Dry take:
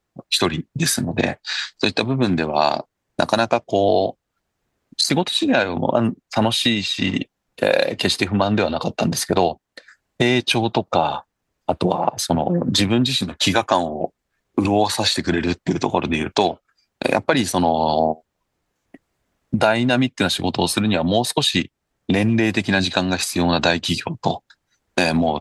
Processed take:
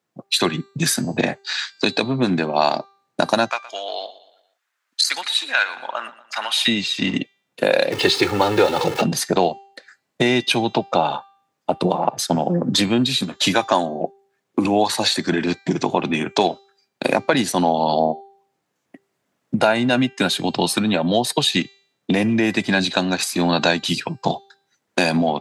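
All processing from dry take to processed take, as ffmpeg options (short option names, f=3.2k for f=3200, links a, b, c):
-filter_complex "[0:a]asettb=1/sr,asplit=3[a][b][c];[a]atrim=end=3.494[d];[b]atrim=start=3.49:end=6.68,asetpts=PTS-STARTPTS,afade=t=in:d=0.004:c=qsin,afade=t=out:st=3.186:d=0.004:c=qsin,highpass=f=1.4k:t=q:w=1.6,aecho=1:1:118|236|354|472:0.141|0.0636|0.0286|0.0129,atrim=end_sample=140679[e];[c]atrim=start=6.676[f];[d][e]acrossfade=d=0.004:c1=hsin:c2=qsin[g];[g][f]acrossfade=d=0.004:c1=qsin:c2=hsin,asettb=1/sr,asplit=3[h][i][j];[h]atrim=end=7.924[k];[i]atrim=start=7.92:end=9.02,asetpts=PTS-STARTPTS,afade=t=in:d=0.004:c=qsin,afade=t=out:st=1.096:d=0.004:c=qsin,aeval=exprs='val(0)+0.5*0.0708*sgn(val(0))':c=same,acrossover=split=5800[l][m];[m]acompressor=threshold=-40dB:ratio=4:attack=1:release=60[n];[l][n]amix=inputs=2:normalize=0,aecho=1:1:2.3:0.87,atrim=end_sample=48510[o];[j]atrim=start=9.016[p];[k][o]acrossfade=d=0.004:c1=hsin:c2=qsin[q];[q][p]acrossfade=d=0.004:c1=qsin:c2=hsin,highpass=f=130:w=0.5412,highpass=f=130:w=1.3066,bandreject=f=394.4:t=h:w=4,bandreject=f=788.8:t=h:w=4,bandreject=f=1.1832k:t=h:w=4,bandreject=f=1.5776k:t=h:w=4,bandreject=f=1.972k:t=h:w=4,bandreject=f=2.3664k:t=h:w=4,bandreject=f=2.7608k:t=h:w=4,bandreject=f=3.1552k:t=h:w=4,bandreject=f=3.5496k:t=h:w=4,bandreject=f=3.944k:t=h:w=4,bandreject=f=4.3384k:t=h:w=4,bandreject=f=4.7328k:t=h:w=4,bandreject=f=5.1272k:t=h:w=4,bandreject=f=5.5216k:t=h:w=4,bandreject=f=5.916k:t=h:w=4,bandreject=f=6.3104k:t=h:w=4,bandreject=f=6.7048k:t=h:w=4,bandreject=f=7.0992k:t=h:w=4,bandreject=f=7.4936k:t=h:w=4,bandreject=f=7.888k:t=h:w=4"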